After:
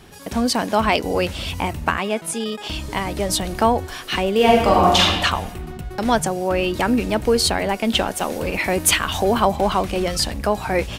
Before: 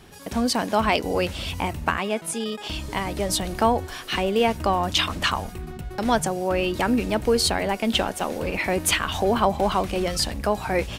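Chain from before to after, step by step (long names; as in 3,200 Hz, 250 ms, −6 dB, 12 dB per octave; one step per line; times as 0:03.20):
0:04.36–0:05.01: thrown reverb, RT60 1.3 s, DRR −3.5 dB
0:08.10–0:09.56: high-shelf EQ 5,900 Hz +5 dB
level +3 dB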